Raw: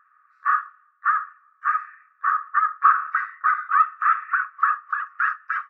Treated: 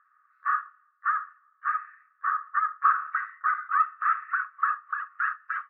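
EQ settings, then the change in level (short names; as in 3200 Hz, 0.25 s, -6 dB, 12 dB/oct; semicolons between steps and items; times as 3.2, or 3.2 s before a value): HPF 1300 Hz 6 dB/oct; air absorption 410 m; notch 2400 Hz, Q 16; 0.0 dB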